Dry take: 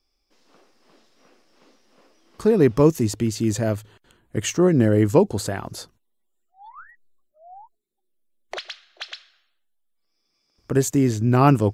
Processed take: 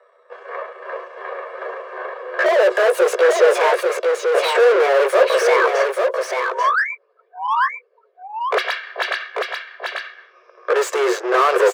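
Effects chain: pitch bend over the whole clip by +8.5 st ending unshifted; level-controlled noise filter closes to 1.6 kHz, open at -16 dBFS; comb 1.8 ms, depth 70%; in parallel at +2 dB: compression, threshold -29 dBFS, peak gain reduction 19 dB; on the sum: overdrive pedal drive 36 dB, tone 1.5 kHz, clips at -3 dBFS; rippled Chebyshev high-pass 360 Hz, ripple 6 dB; on a send: delay 840 ms -4.5 dB; on the sum: trim -1 dB

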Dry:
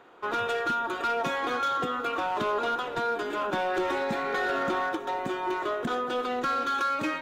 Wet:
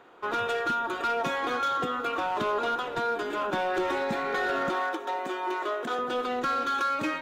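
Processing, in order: 4.69–5.99 s: high-pass 330 Hz 12 dB/octave; hard clipper -22 dBFS, distortion -39 dB

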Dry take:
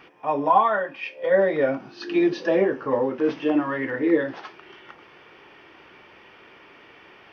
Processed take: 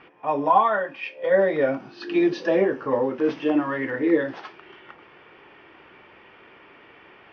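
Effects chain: level-controlled noise filter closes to 2.9 kHz, open at -20 dBFS

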